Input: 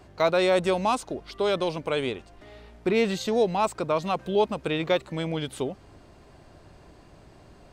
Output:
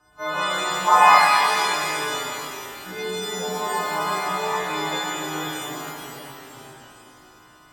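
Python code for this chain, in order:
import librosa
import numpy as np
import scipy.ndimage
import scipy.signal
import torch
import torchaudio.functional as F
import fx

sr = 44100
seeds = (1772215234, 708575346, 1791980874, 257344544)

y = fx.freq_snap(x, sr, grid_st=3)
y = fx.band_shelf(y, sr, hz=1200.0, db=10.5, octaves=1.1)
y = y + 0.52 * np.pad(y, (int(6.6 * sr / 1000.0), 0))[:len(y)]
y = fx.echo_pitch(y, sr, ms=117, semitones=-1, count=3, db_per_echo=-6.0)
y = fx.spec_box(y, sr, start_s=0.88, length_s=0.23, low_hz=450.0, high_hz=2300.0, gain_db=12)
y = fx.rev_shimmer(y, sr, seeds[0], rt60_s=2.3, semitones=12, shimmer_db=-8, drr_db=-9.5)
y = y * librosa.db_to_amplitude(-17.5)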